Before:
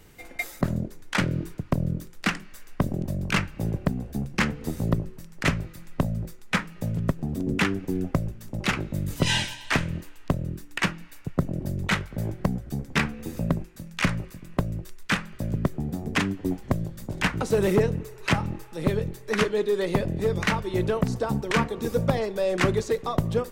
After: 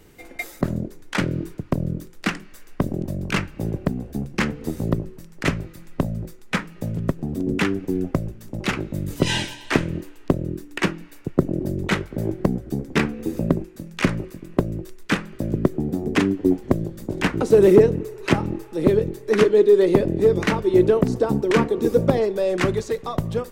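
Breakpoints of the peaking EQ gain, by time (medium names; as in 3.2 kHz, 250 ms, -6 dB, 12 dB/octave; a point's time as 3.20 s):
peaking EQ 350 Hz 1.2 oct
8.95 s +6 dB
9.58 s +12.5 dB
22.13 s +12.5 dB
22.83 s +0.5 dB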